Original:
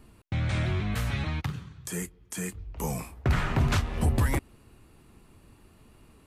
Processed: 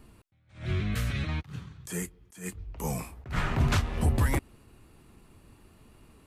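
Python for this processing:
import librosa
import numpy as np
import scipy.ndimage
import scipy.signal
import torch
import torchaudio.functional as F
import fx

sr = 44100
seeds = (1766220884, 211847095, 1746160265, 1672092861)

y = fx.peak_eq(x, sr, hz=860.0, db=-13.0, octaves=0.5, at=(0.65, 1.29))
y = fx.attack_slew(y, sr, db_per_s=160.0)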